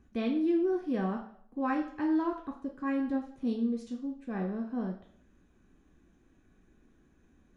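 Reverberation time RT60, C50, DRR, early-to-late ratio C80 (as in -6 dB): 0.60 s, 8.5 dB, 2.0 dB, 12.0 dB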